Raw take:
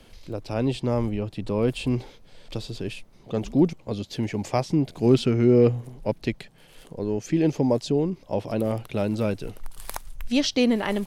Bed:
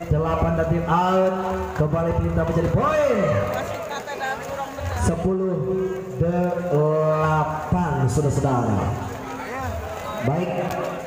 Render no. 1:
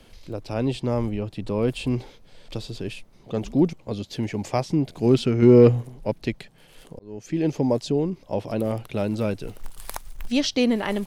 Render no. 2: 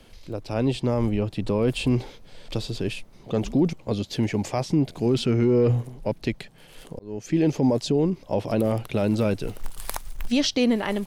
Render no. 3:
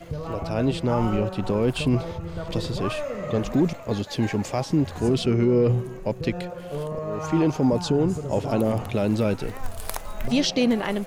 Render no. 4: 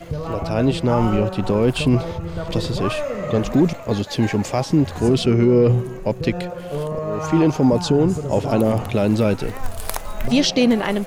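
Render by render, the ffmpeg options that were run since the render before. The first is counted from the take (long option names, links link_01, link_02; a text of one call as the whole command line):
ffmpeg -i in.wav -filter_complex "[0:a]asettb=1/sr,asplit=3[link_01][link_02][link_03];[link_01]atrim=end=5.424[link_04];[link_02]atrim=start=5.42:end=5.83,asetpts=PTS-STARTPTS,afade=type=in:duration=0.004:curve=qsin,afade=type=out:start_time=0.406:duration=0.004:curve=qsin,acontrast=26[link_05];[link_03]atrim=start=5.826[link_06];[link_04][link_05]acrossfade=duration=0.004:curve1=hsin:curve2=qsin[link_07];[link_07][link_06]acrossfade=duration=0.004:curve1=qsin:curve2=hsin,asettb=1/sr,asplit=3[link_08][link_09][link_10];[link_08]atrim=end=9.484[link_11];[link_09]atrim=start=9.48:end=10.31,asetpts=PTS-STARTPTS,afade=type=in:duration=0.004:curve=qsin,afade=type=out:start_time=0.826:duration=0.004:curve=qsin,acrusher=bits=6:mode=log:mix=0:aa=0.000001[link_12];[link_10]atrim=start=10.306[link_13];[link_11][link_12]acrossfade=duration=0.004:curve1=hsin:curve2=qsin[link_14];[link_14][link_13]acrossfade=duration=0.004:curve1=qsin:curve2=hsin,asplit=2[link_15][link_16];[link_15]atrim=end=6.99,asetpts=PTS-STARTPTS,afade=type=out:start_time=6.986:duration=0.004:curve=hsin[link_17];[link_16]atrim=start=6.99,asetpts=PTS-STARTPTS,afade=type=in:duration=0.73:curve=qsin[link_18];[link_17][link_18]concat=n=2:v=0:a=1" out.wav
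ffmpeg -i in.wav -af "dynaudnorm=framelen=130:gausssize=13:maxgain=4dB,alimiter=limit=-12.5dB:level=0:latency=1:release=16" out.wav
ffmpeg -i in.wav -i bed.wav -filter_complex "[1:a]volume=-11.5dB[link_01];[0:a][link_01]amix=inputs=2:normalize=0" out.wav
ffmpeg -i in.wav -af "volume=5dB" out.wav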